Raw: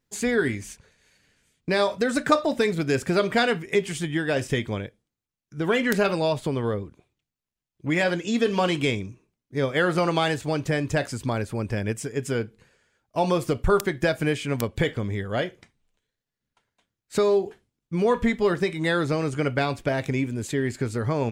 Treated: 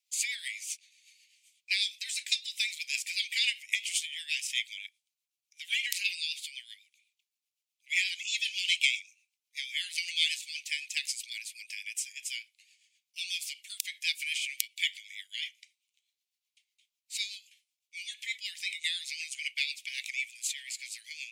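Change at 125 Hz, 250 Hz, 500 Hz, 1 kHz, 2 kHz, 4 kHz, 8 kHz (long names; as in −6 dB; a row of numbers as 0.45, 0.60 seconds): below −40 dB, below −40 dB, below −40 dB, below −40 dB, −4.5 dB, +3.5 dB, +3.5 dB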